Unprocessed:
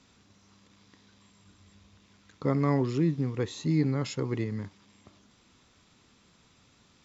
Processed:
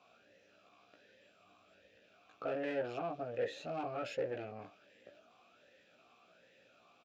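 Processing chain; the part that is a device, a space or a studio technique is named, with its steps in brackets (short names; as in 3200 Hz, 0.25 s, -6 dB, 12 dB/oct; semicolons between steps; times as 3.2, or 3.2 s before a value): doubler 17 ms -2.5 dB; talk box (tube stage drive 33 dB, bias 0.5; vowel sweep a-e 1.3 Hz); gain +12 dB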